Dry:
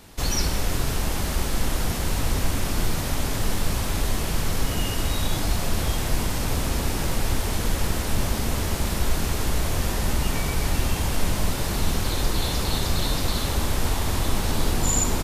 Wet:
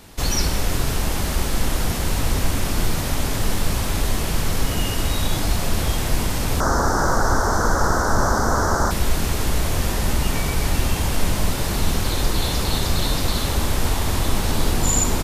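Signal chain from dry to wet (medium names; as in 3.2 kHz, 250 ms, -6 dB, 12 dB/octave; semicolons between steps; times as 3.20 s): 6.60–8.91 s: FFT filter 180 Hz 0 dB, 1.5 kHz +14 dB, 2.5 kHz -23 dB, 5.9 kHz +6 dB, 9.9 kHz -7 dB; trim +3 dB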